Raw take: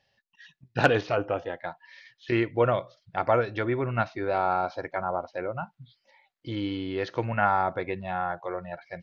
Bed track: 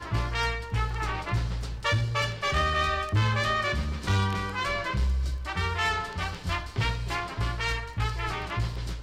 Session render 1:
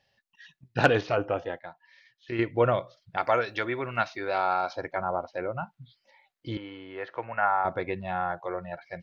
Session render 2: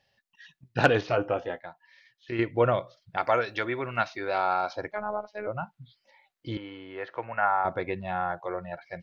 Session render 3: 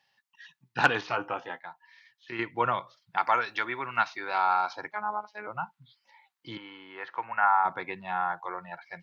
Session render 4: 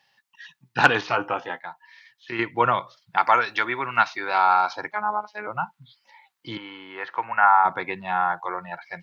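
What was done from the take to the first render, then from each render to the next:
1.59–2.39 s: gain -7.5 dB; 3.17–4.73 s: tilt EQ +3 dB/octave; 6.57–7.65 s: three-band isolator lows -16 dB, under 520 Hz, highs -23 dB, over 2.5 kHz
1.08–1.66 s: doubling 16 ms -10 dB; 4.92–5.47 s: robot voice 210 Hz
high-pass 130 Hz 24 dB/octave; resonant low shelf 740 Hz -6 dB, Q 3
trim +6.5 dB; peak limiter -2 dBFS, peak gain reduction 1 dB

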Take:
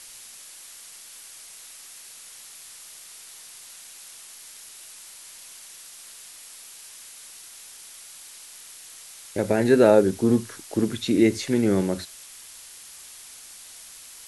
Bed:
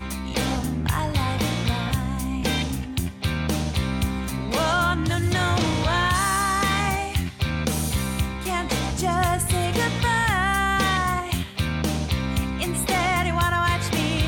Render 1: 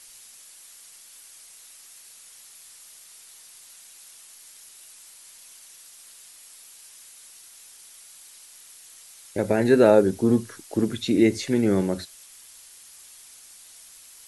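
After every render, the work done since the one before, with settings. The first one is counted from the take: noise reduction 6 dB, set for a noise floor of -45 dBFS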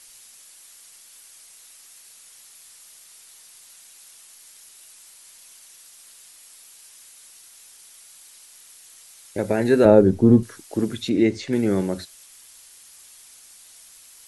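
9.85–10.43 s: tilt EQ -3 dB/octave; 11.09–11.53 s: distance through air 81 m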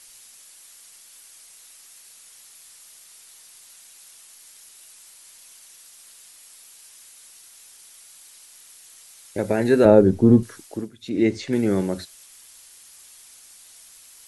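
10.63–11.27 s: dip -18 dB, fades 0.28 s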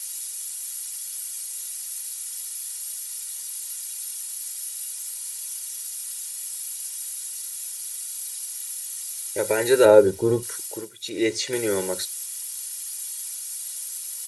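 RIAA curve recording; comb 2.1 ms, depth 76%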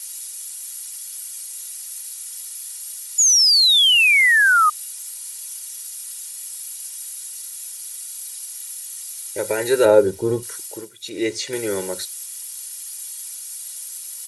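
3.18–4.70 s: painted sound fall 1.2–7 kHz -14 dBFS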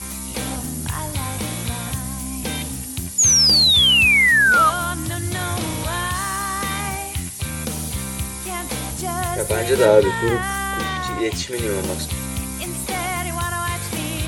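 add bed -3 dB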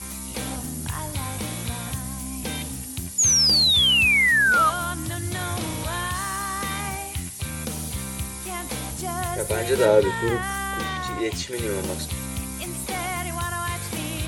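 trim -4 dB

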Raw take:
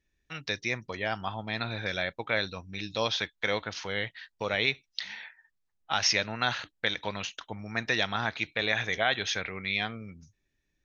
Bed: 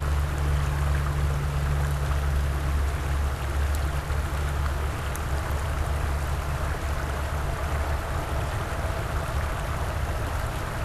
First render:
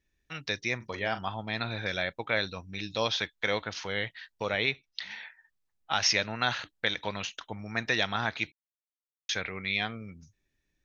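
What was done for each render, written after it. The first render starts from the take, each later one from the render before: 0.76–1.19 s: doubling 41 ms -10.5 dB; 4.51–5.11 s: distance through air 96 m; 8.52–9.29 s: mute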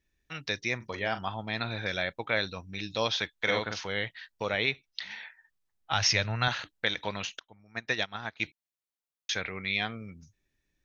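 3.38–3.81 s: doubling 46 ms -2.5 dB; 5.92–6.48 s: resonant low shelf 170 Hz +8.5 dB, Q 1.5; 7.39–8.40 s: upward expansion 2.5:1, over -37 dBFS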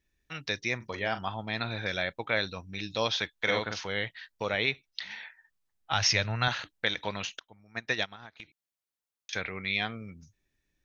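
8.12–9.33 s: compression 16:1, threshold -41 dBFS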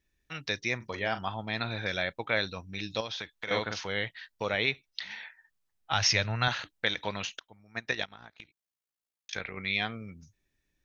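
3.00–3.51 s: compression 4:1, threshold -34 dBFS; 7.91–9.57 s: AM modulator 57 Hz, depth 55%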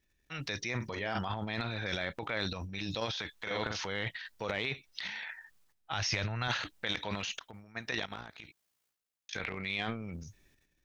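compression 3:1, threshold -33 dBFS, peak gain reduction 9 dB; transient shaper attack -3 dB, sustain +12 dB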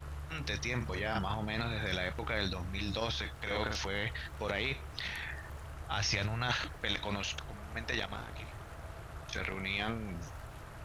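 add bed -18 dB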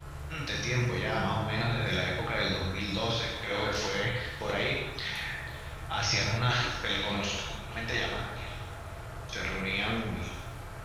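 repeats whose band climbs or falls 163 ms, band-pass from 440 Hz, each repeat 1.4 oct, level -7 dB; gated-style reverb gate 290 ms falling, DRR -3 dB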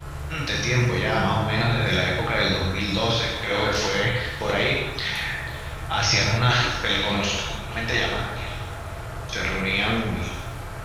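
trim +8 dB

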